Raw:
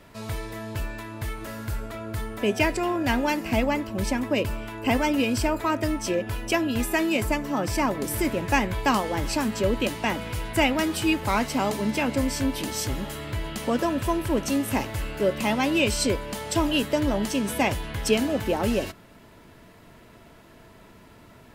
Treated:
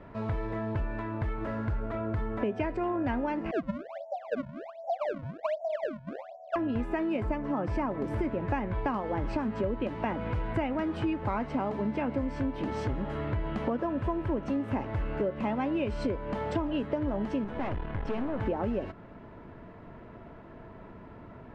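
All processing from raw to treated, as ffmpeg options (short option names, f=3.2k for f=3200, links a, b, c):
-filter_complex "[0:a]asettb=1/sr,asplit=3[a][b][c];[a]atrim=end=3.514[d];[b]atrim=start=3.51:end=6.56,asetpts=PTS-STARTPTS,afade=t=in:d=0.004:c=qsin,afade=t=out:st=3.046:d=0.004:c=qsin,asuperpass=centerf=670:order=8:qfactor=3.6,acrusher=samples=31:mix=1:aa=0.000001:lfo=1:lforange=49.6:lforate=1.3[e];[c]atrim=start=6.556[f];[d][e]acrossfade=d=0.004:c1=hsin:c2=qsin[g];[g][f]acrossfade=d=0.004:c1=qsin:c2=hsin,asettb=1/sr,asplit=3[h][i][j];[h]atrim=end=17.444[k];[i]atrim=start=17.44:end=18.4,asetpts=PTS-STARTPTS,afade=t=in:d=0.004:c=qsin,afade=t=out:st=0.956:d=0.004:c=qsin,lowpass=4.5k,aeval=exprs='(tanh(28.2*val(0)+0.75)-tanh(0.75))/28.2':c=same[l];[j]atrim=start=18.396[m];[k][l]acrossfade=d=0.004:c1=hsin:c2=qsin[n];[n][m]acrossfade=d=0.004:c1=qsin:c2=hsin,lowpass=1.4k,acompressor=threshold=-31dB:ratio=6,volume=3.5dB"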